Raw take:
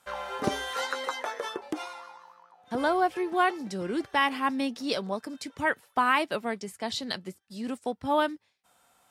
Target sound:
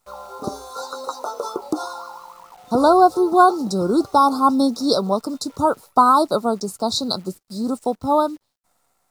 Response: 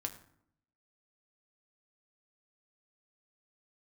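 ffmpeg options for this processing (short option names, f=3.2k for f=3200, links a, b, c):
-af "asuperstop=centerf=2300:order=20:qfactor=0.99,dynaudnorm=f=310:g=9:m=15dB,acrusher=bits=9:dc=4:mix=0:aa=0.000001"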